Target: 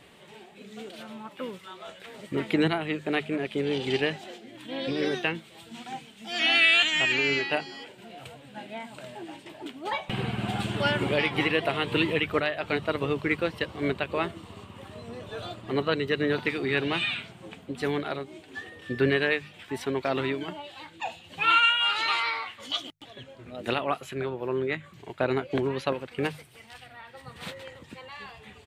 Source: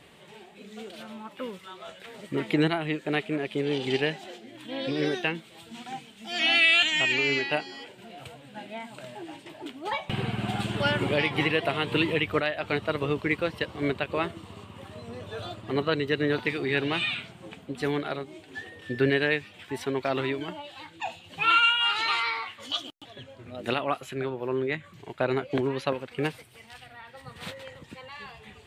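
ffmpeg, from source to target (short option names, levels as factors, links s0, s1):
-filter_complex "[0:a]asplit=2[s0][s1];[s1]asetrate=29433,aresample=44100,atempo=1.49831,volume=0.126[s2];[s0][s2]amix=inputs=2:normalize=0,bandreject=f=50:t=h:w=6,bandreject=f=100:t=h:w=6,bandreject=f=150:t=h:w=6"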